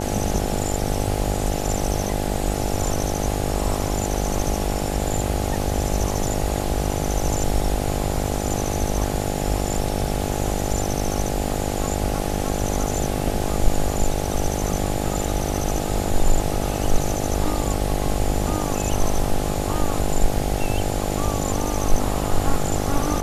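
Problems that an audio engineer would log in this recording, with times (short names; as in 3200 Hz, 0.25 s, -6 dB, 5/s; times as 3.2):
buzz 50 Hz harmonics 17 -26 dBFS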